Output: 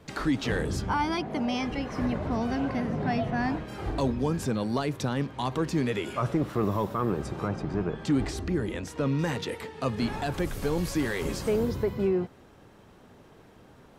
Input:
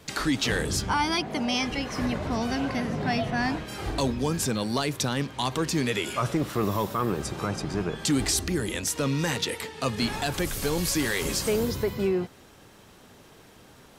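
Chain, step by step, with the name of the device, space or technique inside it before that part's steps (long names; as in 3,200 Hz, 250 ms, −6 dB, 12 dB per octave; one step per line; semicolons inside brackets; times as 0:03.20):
0:07.48–0:09.19: high-shelf EQ 6,200 Hz −10 dB
through cloth (high-shelf EQ 2,400 Hz −13 dB)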